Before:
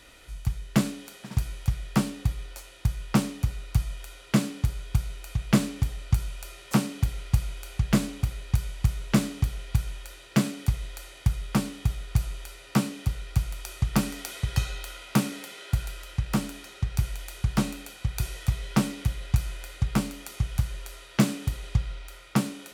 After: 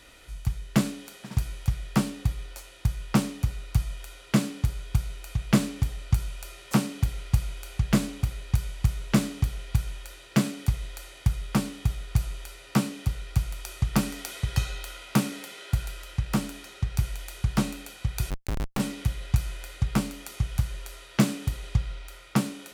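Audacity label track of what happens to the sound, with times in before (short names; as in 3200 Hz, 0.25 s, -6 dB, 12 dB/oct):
18.300000	18.800000	Schmitt trigger flips at -28 dBFS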